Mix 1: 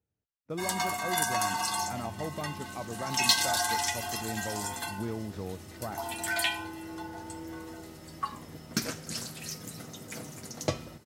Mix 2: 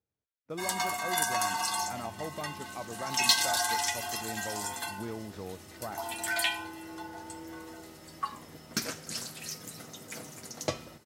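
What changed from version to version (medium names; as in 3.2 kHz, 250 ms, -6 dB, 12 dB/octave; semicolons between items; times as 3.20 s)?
master: add bass shelf 270 Hz -7.5 dB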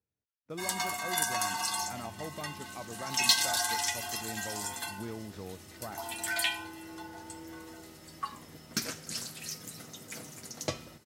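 master: add peaking EQ 720 Hz -3.5 dB 2.3 oct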